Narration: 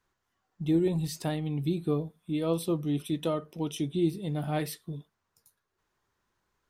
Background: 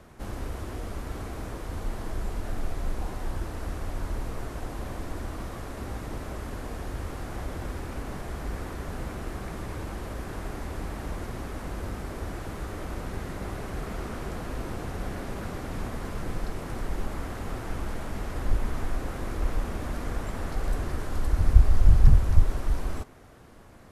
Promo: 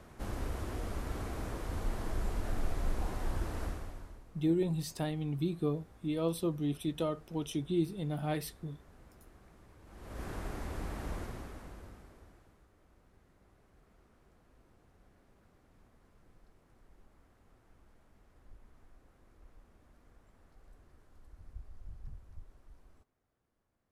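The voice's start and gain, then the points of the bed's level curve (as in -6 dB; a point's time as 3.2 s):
3.75 s, -4.0 dB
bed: 3.64 s -3 dB
4.25 s -23.5 dB
9.81 s -23.5 dB
10.23 s -5 dB
11.17 s -5 dB
12.7 s -31 dB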